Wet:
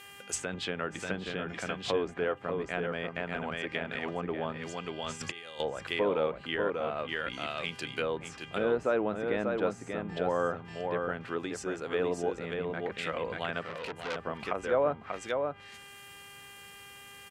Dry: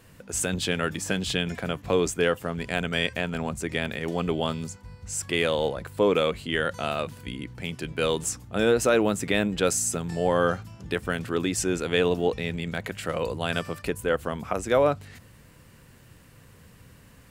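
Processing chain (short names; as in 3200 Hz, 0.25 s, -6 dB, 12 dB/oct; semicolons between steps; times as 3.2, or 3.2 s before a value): 11.38–11.95 tone controls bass -6 dB, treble +15 dB; echo 0.588 s -4.5 dB; 4.99–5.6 negative-ratio compressor -32 dBFS, ratio -0.5; buzz 400 Hz, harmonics 8, -50 dBFS -1 dB/oct; treble ducked by the level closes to 1100 Hz, closed at -22 dBFS; tilt +3 dB/oct; 13.65–14.16 core saturation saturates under 2700 Hz; gain -3.5 dB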